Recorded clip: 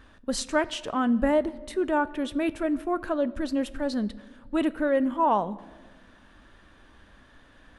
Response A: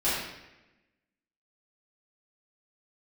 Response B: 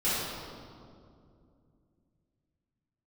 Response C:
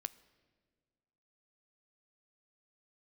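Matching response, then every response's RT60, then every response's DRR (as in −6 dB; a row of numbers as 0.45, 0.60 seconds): C; 1.0, 2.4, 1.7 seconds; −13.0, −13.0, 15.5 decibels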